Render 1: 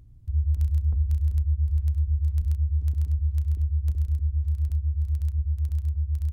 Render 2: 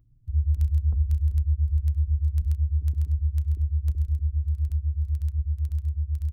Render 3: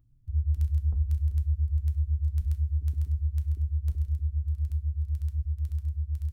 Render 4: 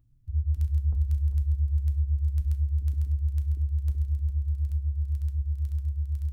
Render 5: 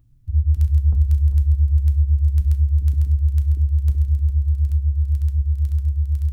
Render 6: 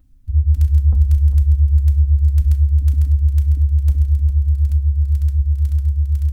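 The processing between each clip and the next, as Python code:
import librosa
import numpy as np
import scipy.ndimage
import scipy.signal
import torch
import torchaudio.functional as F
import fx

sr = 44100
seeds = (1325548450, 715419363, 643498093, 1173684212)

y1 = fx.bin_expand(x, sr, power=1.5)
y1 = y1 * 10.0 ** (1.5 / 20.0)
y2 = fx.rev_double_slope(y1, sr, seeds[0], early_s=0.36, late_s=2.1, knee_db=-18, drr_db=8.0)
y2 = y2 * 10.0 ** (-3.5 / 20.0)
y3 = fx.echo_feedback(y2, sr, ms=404, feedback_pct=40, wet_db=-11.0)
y4 = fx.dynamic_eq(y3, sr, hz=140.0, q=1.9, threshold_db=-46.0, ratio=4.0, max_db=7)
y4 = y4 * 10.0 ** (8.0 / 20.0)
y5 = y4 + 0.83 * np.pad(y4, (int(3.9 * sr / 1000.0), 0))[:len(y4)]
y5 = y5 * 10.0 ** (2.0 / 20.0)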